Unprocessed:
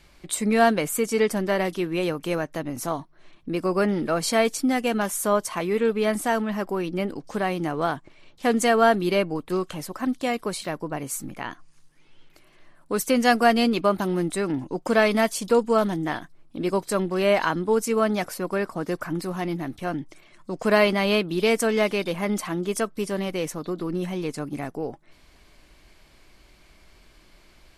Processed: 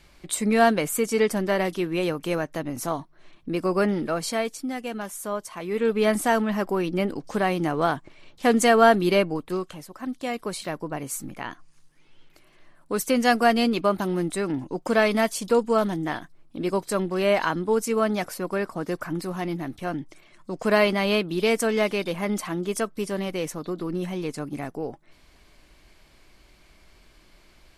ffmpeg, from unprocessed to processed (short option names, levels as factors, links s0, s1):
-af "volume=7.94,afade=t=out:st=3.85:d=0.69:silence=0.398107,afade=t=in:st=5.59:d=0.44:silence=0.316228,afade=t=out:st=9.16:d=0.71:silence=0.281838,afade=t=in:st=9.87:d=0.78:silence=0.398107"